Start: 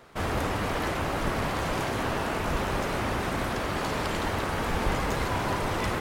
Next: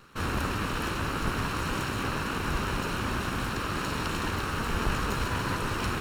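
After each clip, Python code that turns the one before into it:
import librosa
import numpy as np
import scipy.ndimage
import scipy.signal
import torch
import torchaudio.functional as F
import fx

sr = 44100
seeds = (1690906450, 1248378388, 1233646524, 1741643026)

y = fx.lower_of_two(x, sr, delay_ms=0.72)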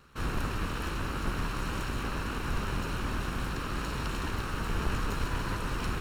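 y = fx.octave_divider(x, sr, octaves=2, level_db=4.0)
y = y * 10.0 ** (-5.0 / 20.0)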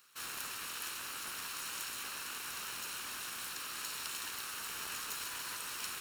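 y = np.diff(x, prepend=0.0)
y = y * 10.0 ** (6.0 / 20.0)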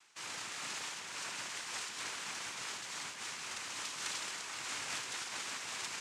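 y = fx.noise_vocoder(x, sr, seeds[0], bands=4)
y = fx.am_noise(y, sr, seeds[1], hz=5.7, depth_pct=60)
y = y * 10.0 ** (4.5 / 20.0)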